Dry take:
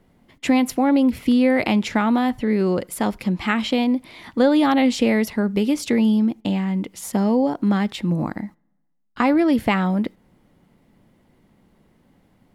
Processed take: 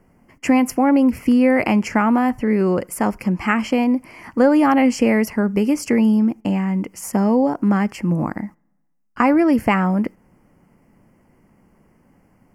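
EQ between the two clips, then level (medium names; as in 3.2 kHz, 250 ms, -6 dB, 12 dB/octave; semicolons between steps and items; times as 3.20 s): Butterworth band-stop 3.7 kHz, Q 1.8; peaking EQ 1.1 kHz +2.5 dB; +2.0 dB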